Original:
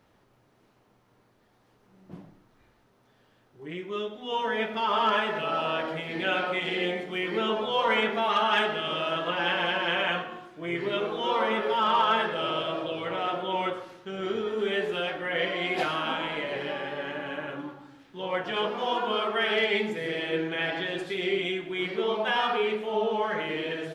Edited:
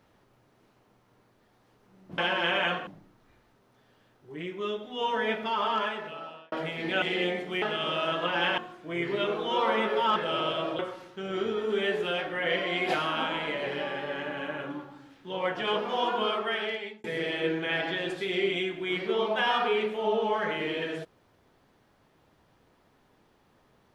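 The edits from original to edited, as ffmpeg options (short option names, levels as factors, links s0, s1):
-filter_complex "[0:a]asplit=10[s0][s1][s2][s3][s4][s5][s6][s7][s8][s9];[s0]atrim=end=2.182[s10];[s1]atrim=start=9.618:end=10.312[s11];[s2]atrim=start=2.178:end=5.83,asetpts=PTS-STARTPTS,afade=t=out:st=2.422:d=1.23[s12];[s3]atrim=start=5.83:end=6.332,asetpts=PTS-STARTPTS,afade=t=in:d=0.004:c=hsin[s13];[s4]atrim=start=6.628:end=7.232[s14];[s5]atrim=start=8.658:end=9.622[s15];[s6]atrim=start=10.308:end=11.892[s16];[s7]atrim=start=12.258:end=12.892[s17];[s8]atrim=start=13.678:end=19.93,asetpts=PTS-STARTPTS,afade=t=out:st=5.452:d=0.8[s18];[s9]atrim=start=19.93,asetpts=PTS-STARTPTS,afade=t=in:d=0.004:c=hsin[s19];[s10][s11]acrossfade=d=0.004:c1=hsin:c2=hsin[s20];[s12][s13]concat=n=2:v=0:a=1[s21];[s20][s21]acrossfade=d=0.004:c1=hsin:c2=hsin[s22];[s22][s14]acrossfade=d=0.004:c1=hsin:c2=hsin[s23];[s23][s15]acrossfade=d=0.004:c1=hsin:c2=hsin[s24];[s24][s16]acrossfade=d=0.004:c1=hsin:c2=hsin[s25];[s25][s17]acrossfade=d=0.004:c1=hsin:c2=hsin[s26];[s18][s19]concat=n=2:v=0:a=1[s27];[s26][s27]acrossfade=d=0.004:c1=hsin:c2=hsin"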